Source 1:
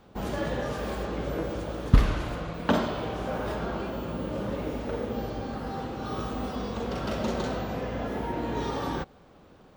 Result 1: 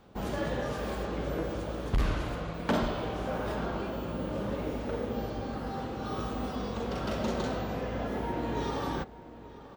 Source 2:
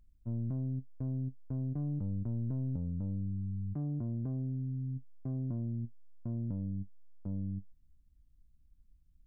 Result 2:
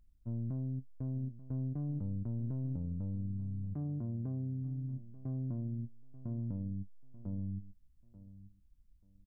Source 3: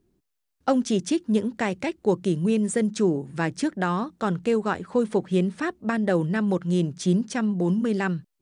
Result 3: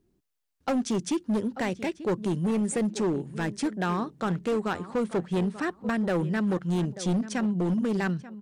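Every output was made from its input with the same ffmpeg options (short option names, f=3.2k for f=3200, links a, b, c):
-filter_complex "[0:a]asplit=2[a][b];[b]adelay=887,lowpass=f=2.6k:p=1,volume=-16dB,asplit=2[c][d];[d]adelay=887,lowpass=f=2.6k:p=1,volume=0.21[e];[a][c][e]amix=inputs=3:normalize=0,asoftclip=type=hard:threshold=-20dB,volume=-2dB"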